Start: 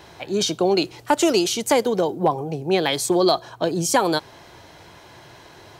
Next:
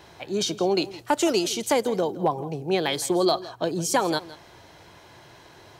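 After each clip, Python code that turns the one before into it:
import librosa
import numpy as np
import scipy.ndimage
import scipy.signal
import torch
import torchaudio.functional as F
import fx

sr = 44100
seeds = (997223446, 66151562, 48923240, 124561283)

y = x + 10.0 ** (-17.5 / 20.0) * np.pad(x, (int(164 * sr / 1000.0), 0))[:len(x)]
y = y * 10.0 ** (-4.0 / 20.0)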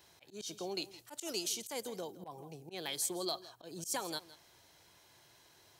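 y = librosa.effects.preemphasis(x, coef=0.8, zi=[0.0])
y = fx.auto_swell(y, sr, attack_ms=102.0)
y = y * 10.0 ** (-4.5 / 20.0)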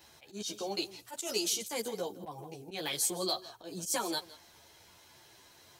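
y = fx.ensemble(x, sr)
y = y * 10.0 ** (8.0 / 20.0)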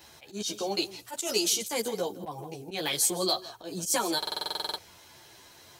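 y = fx.buffer_glitch(x, sr, at_s=(4.18,), block=2048, repeats=12)
y = y * 10.0 ** (5.5 / 20.0)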